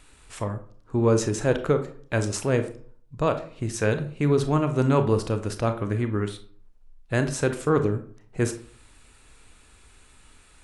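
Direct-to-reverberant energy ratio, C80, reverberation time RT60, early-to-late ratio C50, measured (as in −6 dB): 8.0 dB, 16.0 dB, 0.50 s, 11.5 dB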